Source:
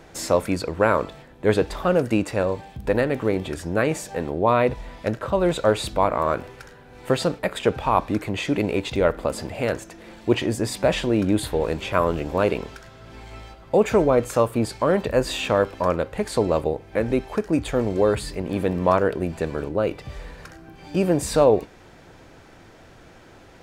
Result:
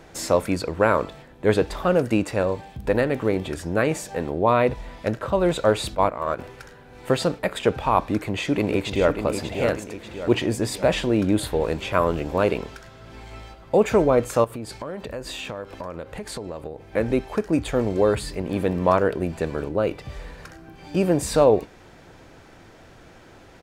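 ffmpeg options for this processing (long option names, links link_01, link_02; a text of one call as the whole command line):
ffmpeg -i in.wav -filter_complex "[0:a]asettb=1/sr,asplit=3[link_01][link_02][link_03];[link_01]atrim=end=5.954[link_04];[link_02]atrim=start=5.95:end=6.39,asetpts=PTS-STARTPTS,afade=type=in:duration=0.004:curve=qsin,afade=type=out:start_time=0.436:duration=0.004:curve=qsin,agate=range=-9dB:threshold=-22dB:ratio=16:release=100:detection=peak[link_05];[link_03]atrim=start=6.386[link_06];[link_04][link_05]acrossfade=duration=0.004:curve1=hsin:curve2=qsin[link_07];[link_07][link_06]acrossfade=duration=0.004:curve1=qsin:curve2=hsin,asplit=2[link_08][link_09];[link_09]afade=type=in:start_time=7.99:duration=0.01,afade=type=out:start_time=9.17:duration=0.01,aecho=0:1:590|1180|1770|2360|2950|3540:0.421697|0.210848|0.105424|0.0527121|0.026356|0.013178[link_10];[link_08][link_10]amix=inputs=2:normalize=0,asettb=1/sr,asplit=3[link_11][link_12][link_13];[link_11]atrim=end=14.444[link_14];[link_12]atrim=start=14.44:end=16.88,asetpts=PTS-STARTPTS,afade=type=in:duration=0.004:curve=qsin,afade=type=out:start_time=2.436:duration=0.004:curve=qsin,acompressor=threshold=-30dB:ratio=5:attack=3.2:release=140:knee=1:detection=peak[link_15];[link_13]atrim=start=16.876[link_16];[link_14][link_15]acrossfade=duration=0.004:curve1=hsin:curve2=qsin[link_17];[link_17][link_16]acrossfade=duration=0.004:curve1=qsin:curve2=hsin" out.wav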